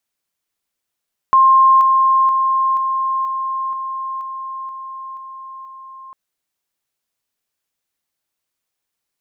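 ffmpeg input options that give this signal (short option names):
-f lavfi -i "aevalsrc='pow(10,(-7-3*floor(t/0.48))/20)*sin(2*PI*1060*t)':d=4.8:s=44100"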